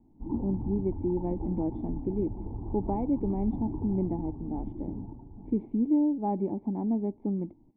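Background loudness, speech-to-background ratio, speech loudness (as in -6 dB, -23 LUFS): -38.5 LUFS, 7.5 dB, -31.0 LUFS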